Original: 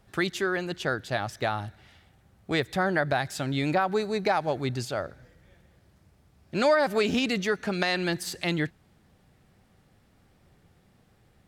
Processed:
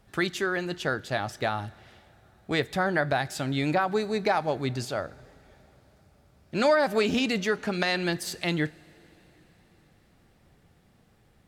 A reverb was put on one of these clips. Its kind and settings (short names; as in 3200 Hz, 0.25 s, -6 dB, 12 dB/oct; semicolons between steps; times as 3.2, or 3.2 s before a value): two-slope reverb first 0.24 s, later 4.7 s, from -22 dB, DRR 14.5 dB